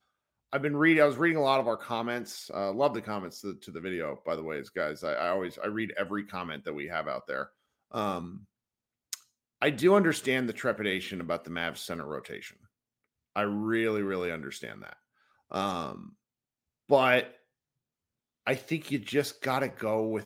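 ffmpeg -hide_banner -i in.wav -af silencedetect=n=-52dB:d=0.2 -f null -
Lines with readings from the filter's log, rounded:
silence_start: 0.00
silence_end: 0.52 | silence_duration: 0.52
silence_start: 7.48
silence_end: 7.91 | silence_duration: 0.43
silence_start: 8.45
silence_end: 9.13 | silence_duration: 0.68
silence_start: 9.23
silence_end: 9.61 | silence_duration: 0.39
silence_start: 12.65
silence_end: 13.36 | silence_duration: 0.71
silence_start: 14.94
silence_end: 15.50 | silence_duration: 0.57
silence_start: 16.13
silence_end: 16.89 | silence_duration: 0.76
silence_start: 17.36
silence_end: 18.46 | silence_duration: 1.11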